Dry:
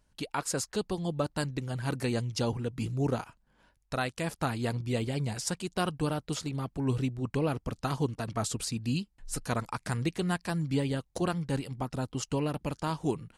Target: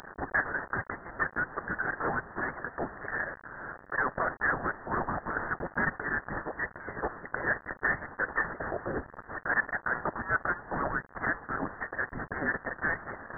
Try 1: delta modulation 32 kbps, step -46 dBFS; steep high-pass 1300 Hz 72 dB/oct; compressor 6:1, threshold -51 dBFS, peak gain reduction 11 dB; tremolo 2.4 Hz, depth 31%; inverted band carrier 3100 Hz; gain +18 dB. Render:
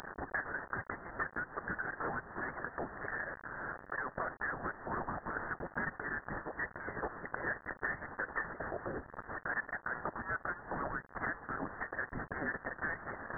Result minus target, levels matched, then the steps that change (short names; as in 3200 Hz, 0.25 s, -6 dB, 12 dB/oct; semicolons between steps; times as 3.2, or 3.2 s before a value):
compressor: peak gain reduction +11 dB
remove: compressor 6:1, threshold -51 dBFS, peak gain reduction 11 dB